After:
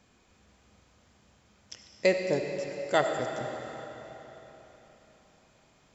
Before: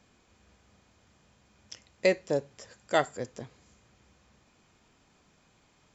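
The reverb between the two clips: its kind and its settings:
comb and all-pass reverb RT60 3.9 s, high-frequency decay 0.9×, pre-delay 30 ms, DRR 4 dB

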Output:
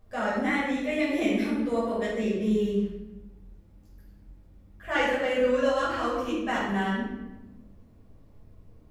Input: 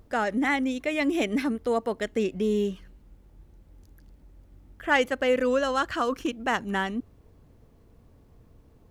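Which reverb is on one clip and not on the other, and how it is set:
rectangular room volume 460 cubic metres, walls mixed, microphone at 5.8 metres
level −14 dB

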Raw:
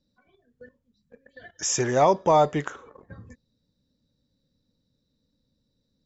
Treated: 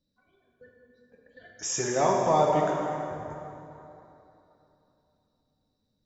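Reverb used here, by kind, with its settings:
dense smooth reverb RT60 3.1 s, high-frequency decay 0.65×, DRR −1.5 dB
level −6.5 dB

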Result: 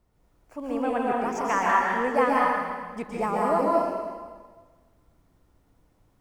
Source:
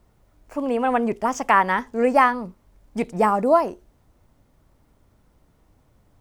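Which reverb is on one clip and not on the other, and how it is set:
dense smooth reverb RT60 1.5 s, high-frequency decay 0.95×, pre-delay 115 ms, DRR −4.5 dB
level −9.5 dB

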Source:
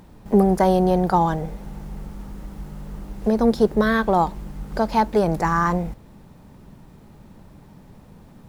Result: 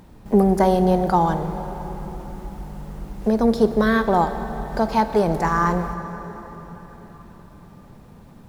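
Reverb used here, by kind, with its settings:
dense smooth reverb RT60 4.7 s, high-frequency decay 0.7×, DRR 9 dB

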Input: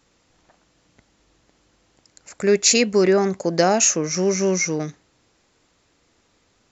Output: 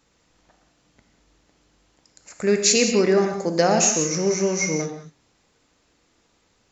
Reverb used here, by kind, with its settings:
reverb whose tail is shaped and stops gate 220 ms flat, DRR 4.5 dB
level −2.5 dB

